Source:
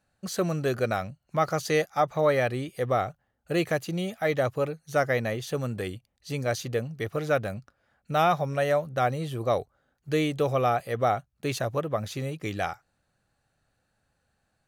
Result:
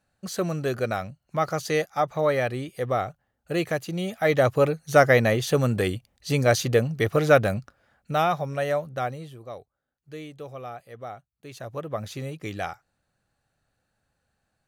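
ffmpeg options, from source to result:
ffmpeg -i in.wav -af "volume=20dB,afade=type=in:start_time=3.94:duration=0.79:silence=0.398107,afade=type=out:start_time=7.54:duration=0.73:silence=0.354813,afade=type=out:start_time=8.85:duration=0.56:silence=0.237137,afade=type=in:start_time=11.51:duration=0.49:silence=0.251189" out.wav

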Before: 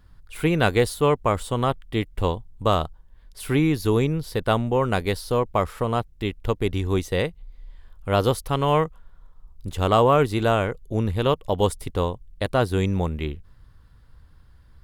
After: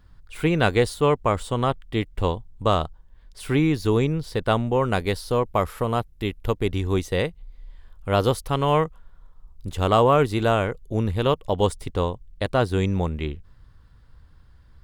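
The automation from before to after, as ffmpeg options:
ffmpeg -i in.wav -af "asetnsamples=nb_out_samples=441:pad=0,asendcmd='4.71 equalizer g -4;5.44 equalizer g 6;6.54 equalizer g -3.5;11.45 equalizer g -11.5',equalizer=frequency=12000:width_type=o:width=0.35:gain=-11.5" out.wav

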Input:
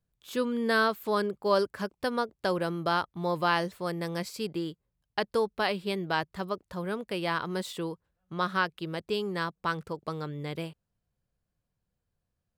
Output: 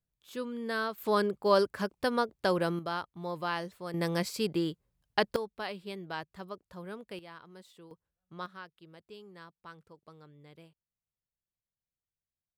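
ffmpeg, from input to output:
ffmpeg -i in.wav -af "asetnsamples=nb_out_samples=441:pad=0,asendcmd='0.98 volume volume 0.5dB;2.79 volume volume -7.5dB;3.94 volume volume 2.5dB;5.36 volume volume -9.5dB;7.19 volume volume -19.5dB;7.91 volume volume -11dB;8.46 volume volume -19dB',volume=-8dB" out.wav

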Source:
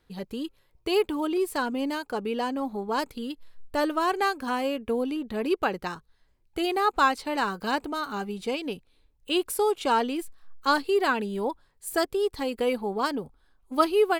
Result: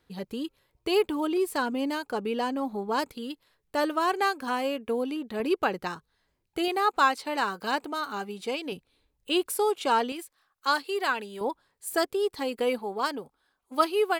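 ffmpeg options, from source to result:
ffmpeg -i in.wav -af "asetnsamples=nb_out_samples=441:pad=0,asendcmd='3.12 highpass f 240;5.4 highpass f 110;6.68 highpass f 340;8.72 highpass f 84;9.47 highpass f 270;10.12 highpass f 830;11.41 highpass f 220;12.79 highpass f 490',highpass=frequency=76:poles=1" out.wav

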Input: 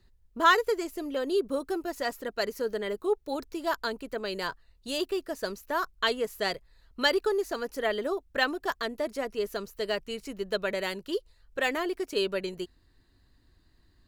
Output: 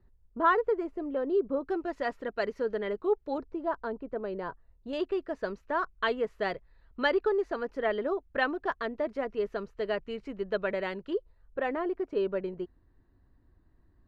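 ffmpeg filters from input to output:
ffmpeg -i in.wav -af "asetnsamples=nb_out_samples=441:pad=0,asendcmd='1.67 lowpass f 2300;3.38 lowpass f 1000;4.93 lowpass f 2000;11.13 lowpass f 1200',lowpass=1200" out.wav

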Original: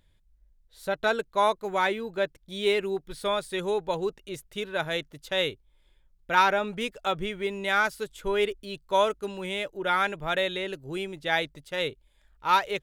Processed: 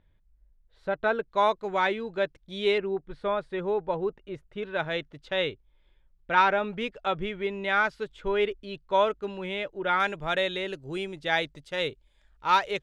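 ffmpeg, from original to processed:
ffmpeg -i in.wav -af "asetnsamples=nb_out_samples=441:pad=0,asendcmd='1.28 lowpass f 4500;2.78 lowpass f 1800;4.63 lowpass f 3300;10 lowpass f 7300',lowpass=2100" out.wav

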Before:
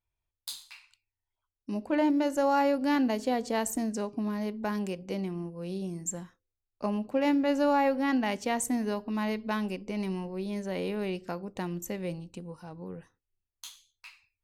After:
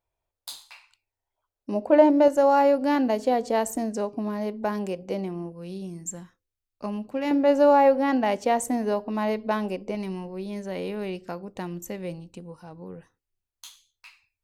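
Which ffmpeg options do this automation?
ffmpeg -i in.wav -af "asetnsamples=nb_out_samples=441:pad=0,asendcmd='2.28 equalizer g 8;5.52 equalizer g -2;7.31 equalizer g 10;9.95 equalizer g 2',equalizer=frequency=610:width_type=o:width=1.6:gain=14" out.wav

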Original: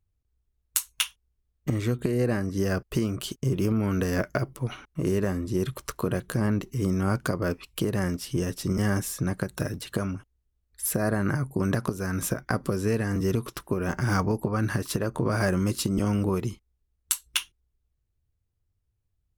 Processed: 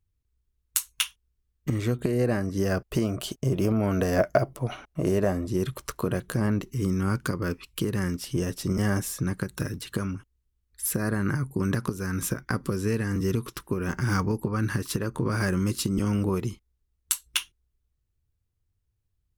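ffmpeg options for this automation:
ffmpeg -i in.wav -af "asetnsamples=nb_out_samples=441:pad=0,asendcmd='1.79 equalizer g 3.5;2.98 equalizer g 11;5.47 equalizer g -0.5;6.64 equalizer g -11.5;8.24 equalizer g 0;9.2 equalizer g -10.5;16.12 equalizer g -3.5',equalizer=frequency=660:width_type=o:width=0.56:gain=-8.5" out.wav

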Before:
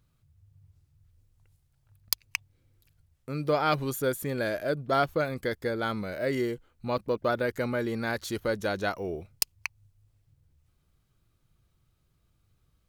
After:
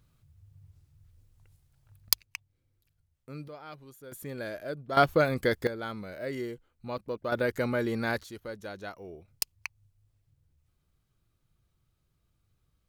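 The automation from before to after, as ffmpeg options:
ffmpeg -i in.wav -af "asetnsamples=nb_out_samples=441:pad=0,asendcmd='2.23 volume volume -8.5dB;3.48 volume volume -20dB;4.12 volume volume -7.5dB;4.97 volume volume 4dB;5.67 volume volume -6.5dB;7.32 volume volume 0.5dB;8.23 volume volume -11dB;9.28 volume volume -4dB',volume=3dB" out.wav

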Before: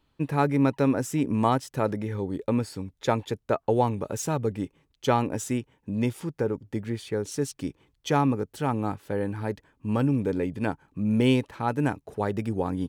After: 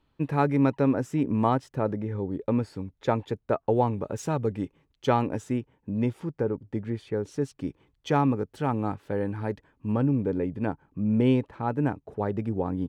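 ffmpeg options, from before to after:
ffmpeg -i in.wav -af "asetnsamples=nb_out_samples=441:pad=0,asendcmd='0.77 lowpass f 1700;1.75 lowpass f 1000;2.44 lowpass f 1700;4.18 lowpass f 2900;5.38 lowpass f 1400;7.68 lowpass f 2600;9.92 lowpass f 1100',lowpass=frequency=3100:poles=1" out.wav

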